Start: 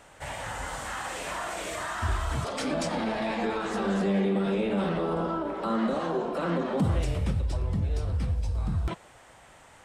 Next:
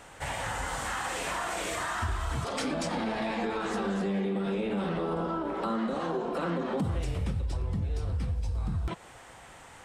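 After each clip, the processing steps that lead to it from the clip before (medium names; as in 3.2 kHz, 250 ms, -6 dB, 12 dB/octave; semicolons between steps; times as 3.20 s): band-stop 610 Hz, Q 12; compression 3:1, threshold -33 dBFS, peak gain reduction 9.5 dB; trim +3.5 dB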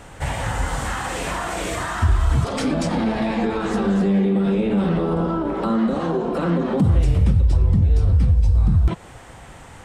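bass shelf 310 Hz +11 dB; trim +5 dB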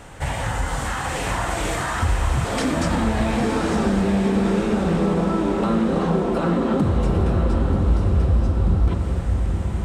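compression, threshold -17 dBFS, peak gain reduction 5.5 dB; echo that smears into a reverb 957 ms, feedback 57%, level -4 dB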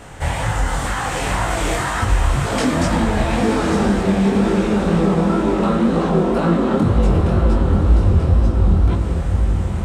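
chorus 2 Hz, delay 18 ms, depth 7.1 ms; trim +6.5 dB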